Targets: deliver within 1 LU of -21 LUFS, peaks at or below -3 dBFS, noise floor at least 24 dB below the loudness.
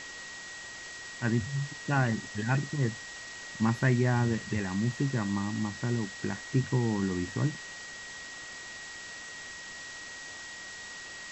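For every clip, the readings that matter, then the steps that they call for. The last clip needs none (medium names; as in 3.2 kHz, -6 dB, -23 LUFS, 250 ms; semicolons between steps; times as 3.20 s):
steady tone 1.9 kHz; tone level -43 dBFS; noise floor -44 dBFS; noise floor target -57 dBFS; loudness -32.5 LUFS; peak level -14.5 dBFS; loudness target -21.0 LUFS
-> band-stop 1.9 kHz, Q 30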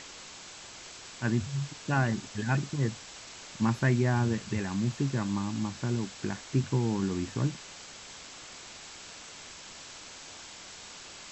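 steady tone not found; noise floor -47 dBFS; noise floor target -55 dBFS
-> noise reduction 8 dB, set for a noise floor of -47 dBFS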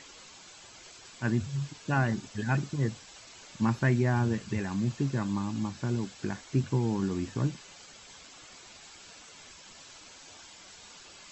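noise floor -51 dBFS; noise floor target -55 dBFS
-> noise reduction 6 dB, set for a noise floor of -51 dBFS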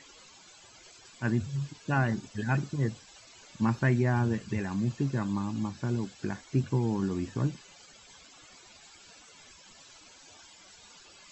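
noise floor -55 dBFS; loudness -30.5 LUFS; peak level -14.0 dBFS; loudness target -21.0 LUFS
-> trim +9.5 dB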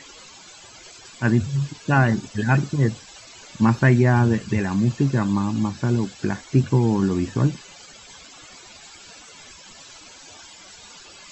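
loudness -21.0 LUFS; peak level -4.5 dBFS; noise floor -45 dBFS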